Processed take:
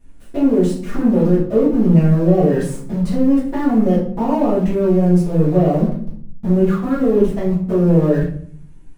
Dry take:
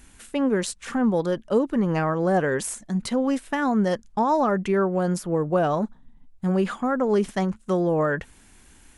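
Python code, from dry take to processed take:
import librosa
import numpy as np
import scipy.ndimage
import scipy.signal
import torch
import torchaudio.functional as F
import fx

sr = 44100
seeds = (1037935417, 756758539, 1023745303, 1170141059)

p1 = fx.env_flanger(x, sr, rest_ms=11.4, full_db=-18.0)
p2 = fx.quant_companded(p1, sr, bits=2)
p3 = p1 + F.gain(torch.from_numpy(p2), -4.0).numpy()
p4 = np.clip(p3, -10.0 ** (-12.0 / 20.0), 10.0 ** (-12.0 / 20.0))
p5 = fx.tilt_shelf(p4, sr, db=8.0, hz=930.0)
p6 = fx.room_shoebox(p5, sr, seeds[0], volume_m3=73.0, walls='mixed', distance_m=1.8)
y = F.gain(torch.from_numpy(p6), -9.5).numpy()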